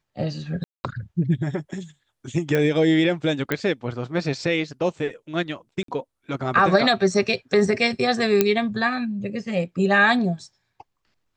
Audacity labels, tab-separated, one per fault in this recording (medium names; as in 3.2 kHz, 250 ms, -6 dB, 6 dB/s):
0.640000	0.840000	dropout 200 ms
2.550000	2.550000	pop -11 dBFS
3.520000	3.520000	pop -9 dBFS
5.830000	5.880000	dropout 53 ms
8.410000	8.410000	pop -3 dBFS